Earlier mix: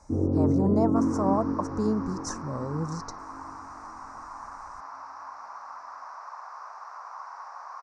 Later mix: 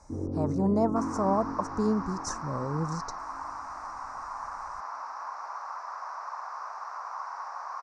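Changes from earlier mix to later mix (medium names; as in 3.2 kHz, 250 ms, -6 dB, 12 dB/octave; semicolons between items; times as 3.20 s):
first sound -8.0 dB; second sound +3.5 dB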